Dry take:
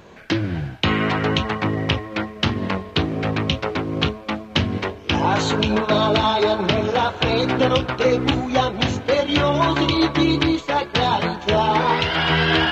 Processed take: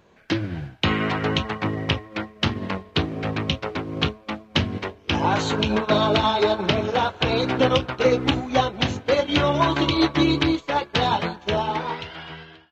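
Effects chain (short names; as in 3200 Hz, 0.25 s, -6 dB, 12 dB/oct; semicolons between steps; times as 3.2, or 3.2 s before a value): ending faded out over 1.53 s; upward expander 1.5:1, over -37 dBFS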